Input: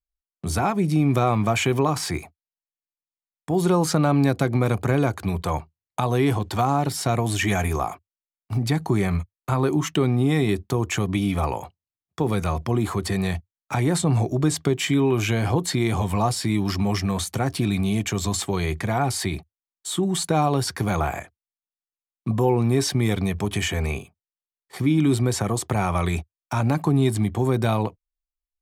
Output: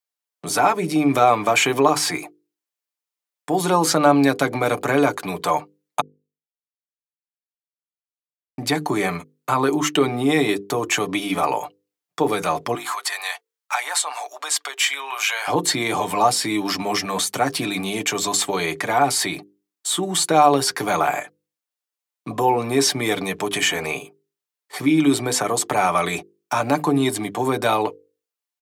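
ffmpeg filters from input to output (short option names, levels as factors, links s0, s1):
-filter_complex "[0:a]asettb=1/sr,asplit=3[s0][s1][s2];[s0]atrim=end=12.754[s3];[s1]atrim=start=12.75:end=15.48,asetpts=PTS-STARTPTS,afade=t=in:d=0.004:c=qsin,afade=t=out:st=2.726:d=0.004:c=qsin,highpass=f=820:w=0.5412,highpass=f=820:w=1.3066[s4];[s2]atrim=start=15.476[s5];[s3][s4]acrossfade=d=0.004:c1=hsin:c2=qsin[s6];[s6][s5]acrossfade=d=0.004:c1=qsin:c2=hsin,asplit=3[s7][s8][s9];[s7]atrim=end=6.01,asetpts=PTS-STARTPTS,afade=t=out:st=6.006:d=0.004:c=hsin[s10];[s8]atrim=start=6.01:end=8.58,asetpts=PTS-STARTPTS,volume=0[s11];[s9]atrim=start=8.58,asetpts=PTS-STARTPTS,afade=t=in:d=0.004:c=hsin[s12];[s10][s11][s12]concat=n=3:v=0:a=1,highpass=340,bandreject=f=50:t=h:w=6,bandreject=f=100:t=h:w=6,bandreject=f=150:t=h:w=6,bandreject=f=200:t=h:w=6,bandreject=f=250:t=h:w=6,bandreject=f=300:t=h:w=6,bandreject=f=350:t=h:w=6,bandreject=f=400:t=h:w=6,bandreject=f=450:t=h:w=6,bandreject=f=500:t=h:w=6,aecho=1:1:6.8:0.5,volume=2"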